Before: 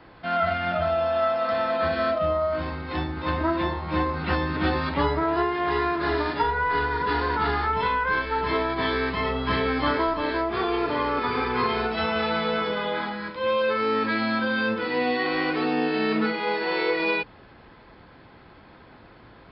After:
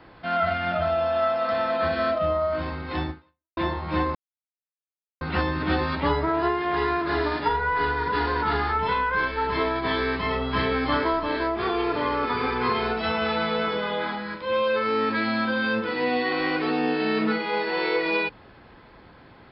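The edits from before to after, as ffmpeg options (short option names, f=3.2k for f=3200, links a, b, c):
-filter_complex "[0:a]asplit=3[a][b][c];[a]atrim=end=3.57,asetpts=PTS-STARTPTS,afade=t=out:st=3.1:d=0.47:c=exp[d];[b]atrim=start=3.57:end=4.15,asetpts=PTS-STARTPTS,afade=t=in:d=0.004:c=hsin,afade=t=out:st=0.576:d=0.004:c=hsin,apad=pad_dur=1.06[e];[c]atrim=start=4.15,asetpts=PTS-STARTPTS,afade=t=in:d=0.004:c=hsin[f];[d][e][f]concat=n=3:v=0:a=1"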